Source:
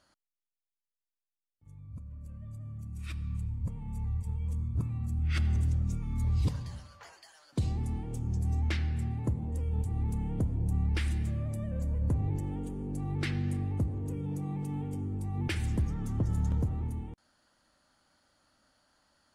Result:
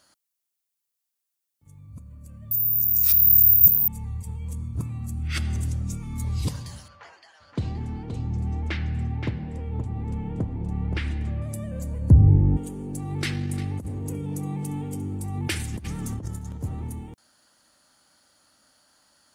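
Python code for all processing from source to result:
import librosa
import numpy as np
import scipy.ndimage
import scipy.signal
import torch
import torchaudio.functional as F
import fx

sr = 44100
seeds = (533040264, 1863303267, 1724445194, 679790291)

y = fx.chain(x, sr, fx.high_shelf_res(hz=3900.0, db=11.0, q=1.5),
    fx.resample_bad(factor=3, down='filtered', up='zero_stuff'), at=(2.51, 3.88))
y = fx.chain(y, sr, fx.lowpass(hz=2800.0, slope=12),
    fx.echo_single(ms=523, db=-6.5), at=(6.88, 11.42))
y = fx.chain(y, sr, fx.gaussian_blur(sigma=2.7),
    fx.tilt_eq(slope=-4.5), at=(12.1, 12.57))
y = fx.chain(y, sr, fx.echo_single(ms=350, db=-15.5),
    fx.over_compress(threshold_db=-31.0, ratio=-0.5), at=(13.11, 16.64))
y = fx.highpass(y, sr, hz=100.0, slope=6)
y = fx.high_shelf(y, sr, hz=5200.0, db=12.0)
y = y * librosa.db_to_amplitude(4.5)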